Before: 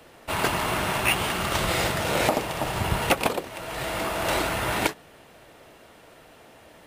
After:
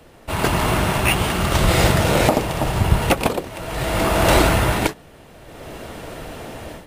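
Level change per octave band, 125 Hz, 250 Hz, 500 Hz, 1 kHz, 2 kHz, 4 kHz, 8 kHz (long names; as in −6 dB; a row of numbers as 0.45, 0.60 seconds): +12.0, +9.5, +7.5, +5.5, +4.0, +4.5, +5.5 decibels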